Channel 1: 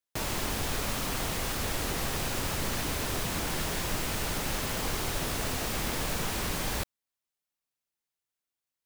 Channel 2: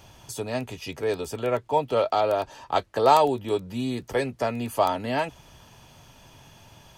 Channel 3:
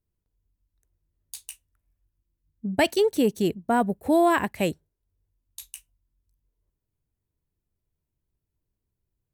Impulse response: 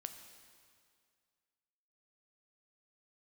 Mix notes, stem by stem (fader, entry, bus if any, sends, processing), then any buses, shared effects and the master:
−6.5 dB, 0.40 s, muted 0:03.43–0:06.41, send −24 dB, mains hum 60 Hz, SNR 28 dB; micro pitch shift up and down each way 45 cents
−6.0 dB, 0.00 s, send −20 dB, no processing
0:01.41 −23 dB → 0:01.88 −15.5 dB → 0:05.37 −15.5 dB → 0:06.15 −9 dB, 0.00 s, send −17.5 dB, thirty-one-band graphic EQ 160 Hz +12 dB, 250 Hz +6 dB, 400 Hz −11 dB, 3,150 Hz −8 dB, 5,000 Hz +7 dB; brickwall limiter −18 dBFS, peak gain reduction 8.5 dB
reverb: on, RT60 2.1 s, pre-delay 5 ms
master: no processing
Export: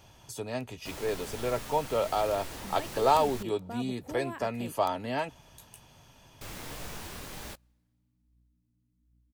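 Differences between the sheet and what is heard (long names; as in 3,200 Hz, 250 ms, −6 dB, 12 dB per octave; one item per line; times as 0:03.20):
stem 1: entry 0.40 s → 0.70 s
stem 3: missing thirty-one-band graphic EQ 160 Hz +12 dB, 250 Hz +6 dB, 400 Hz −11 dB, 3,150 Hz −8 dB, 5,000 Hz +7 dB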